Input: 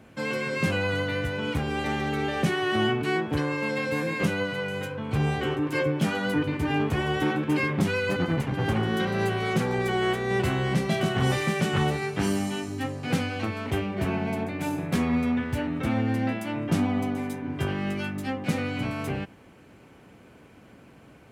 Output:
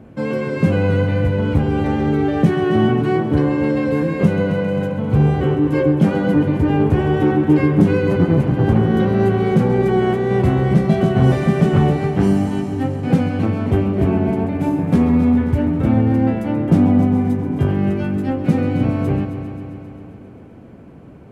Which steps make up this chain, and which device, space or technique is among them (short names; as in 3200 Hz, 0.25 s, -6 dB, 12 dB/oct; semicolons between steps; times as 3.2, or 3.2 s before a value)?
multi-head tape echo (multi-head echo 0.133 s, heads first and second, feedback 66%, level -14 dB; wow and flutter 8.3 cents); tilt shelf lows +9 dB, about 1100 Hz; gain +3 dB